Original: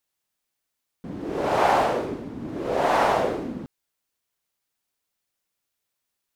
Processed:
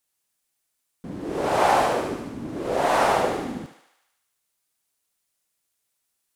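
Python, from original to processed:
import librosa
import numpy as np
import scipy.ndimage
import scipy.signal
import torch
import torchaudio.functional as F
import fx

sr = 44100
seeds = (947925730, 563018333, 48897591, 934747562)

y = fx.peak_eq(x, sr, hz=9500.0, db=7.0, octaves=1.1)
y = fx.echo_thinned(y, sr, ms=74, feedback_pct=67, hz=550.0, wet_db=-7.5)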